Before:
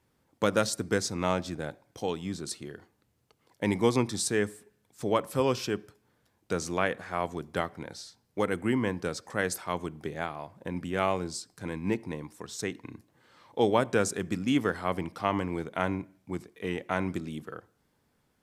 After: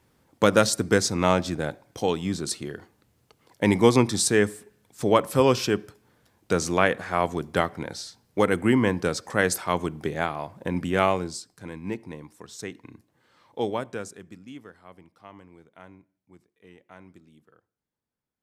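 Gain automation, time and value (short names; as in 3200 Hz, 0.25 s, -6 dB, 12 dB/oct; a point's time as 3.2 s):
10.97 s +7 dB
11.63 s -2.5 dB
13.63 s -2.5 dB
14.21 s -12 dB
14.71 s -18.5 dB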